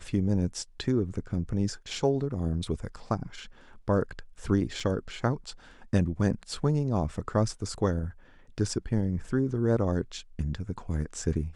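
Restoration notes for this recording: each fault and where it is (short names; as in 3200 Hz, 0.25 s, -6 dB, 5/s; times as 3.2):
4.8 gap 4.3 ms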